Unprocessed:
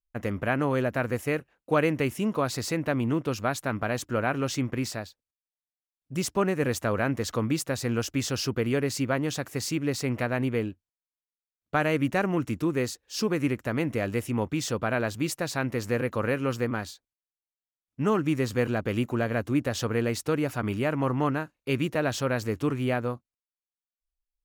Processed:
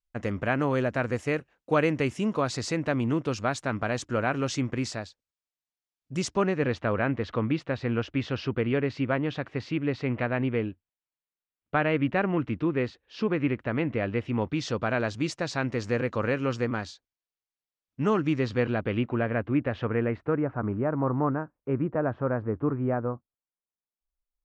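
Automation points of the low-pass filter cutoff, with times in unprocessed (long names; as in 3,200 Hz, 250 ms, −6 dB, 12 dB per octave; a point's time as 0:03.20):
low-pass filter 24 dB per octave
0:06.22 7,700 Hz
0:06.86 3,400 Hz
0:14.16 3,400 Hz
0:14.84 6,300 Hz
0:18.10 6,300 Hz
0:19.33 2,600 Hz
0:19.83 2,600 Hz
0:20.61 1,400 Hz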